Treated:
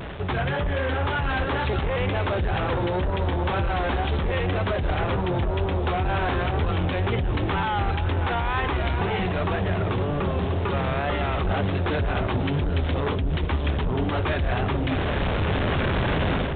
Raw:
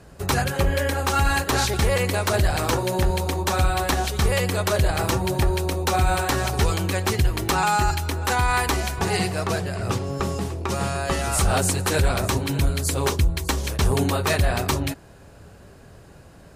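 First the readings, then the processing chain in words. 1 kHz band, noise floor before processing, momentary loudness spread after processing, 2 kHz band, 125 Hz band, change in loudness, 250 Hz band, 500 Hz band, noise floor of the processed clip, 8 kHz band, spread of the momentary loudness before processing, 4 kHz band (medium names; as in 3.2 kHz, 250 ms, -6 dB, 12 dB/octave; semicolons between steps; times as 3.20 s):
-2.5 dB, -47 dBFS, 1 LU, -2.0 dB, -0.5 dB, -2.5 dB, 0.0 dB, -1.0 dB, -26 dBFS, under -40 dB, 5 LU, -5.5 dB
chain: one-bit delta coder 64 kbps, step -35 dBFS; level rider gain up to 13 dB; peak limiter -11 dBFS, peak gain reduction 9.5 dB; reverse; compression 5:1, threshold -27 dBFS, peak gain reduction 11.5 dB; reverse; sine folder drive 7 dB, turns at -17.5 dBFS; vibrato 2 Hz 93 cents; on a send: feedback echo behind a low-pass 756 ms, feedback 63%, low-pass 600 Hz, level -7.5 dB; on the sum: resampled via 8 kHz; trim -3.5 dB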